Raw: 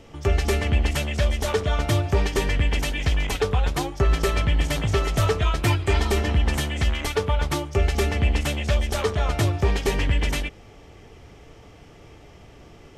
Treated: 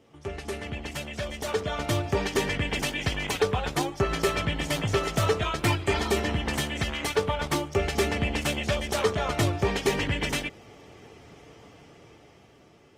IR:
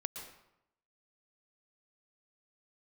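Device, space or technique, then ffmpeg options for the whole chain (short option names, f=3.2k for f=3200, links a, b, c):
video call: -af "highpass=120,dynaudnorm=f=370:g=9:m=11.5dB,volume=-9dB" -ar 48000 -c:a libopus -b:a 24k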